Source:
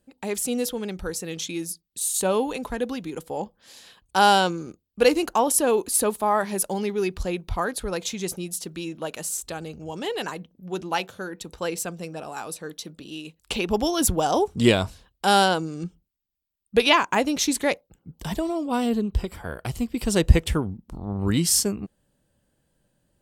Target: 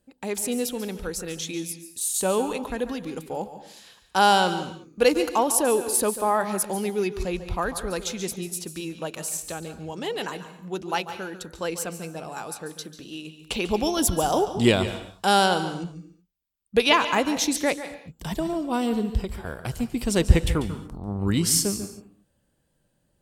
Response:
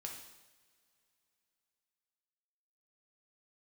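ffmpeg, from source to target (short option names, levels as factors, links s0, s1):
-filter_complex "[0:a]asplit=2[s0][s1];[1:a]atrim=start_sample=2205,afade=t=out:st=0.29:d=0.01,atrim=end_sample=13230,adelay=142[s2];[s1][s2]afir=irnorm=-1:irlink=0,volume=0.422[s3];[s0][s3]amix=inputs=2:normalize=0,volume=0.891"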